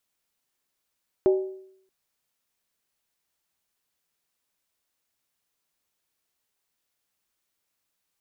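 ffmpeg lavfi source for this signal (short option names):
-f lavfi -i "aevalsrc='0.2*pow(10,-3*t/0.69)*sin(2*PI*380*t)+0.0562*pow(10,-3*t/0.547)*sin(2*PI*605.7*t)+0.0158*pow(10,-3*t/0.472)*sin(2*PI*811.7*t)+0.00447*pow(10,-3*t/0.455)*sin(2*PI*872.5*t)+0.00126*pow(10,-3*t/0.424)*sin(2*PI*1008.1*t)':d=0.63:s=44100"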